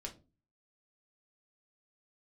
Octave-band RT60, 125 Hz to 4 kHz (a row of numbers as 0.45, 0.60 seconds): 0.55, 0.50, 0.35, 0.25, 0.20, 0.20 seconds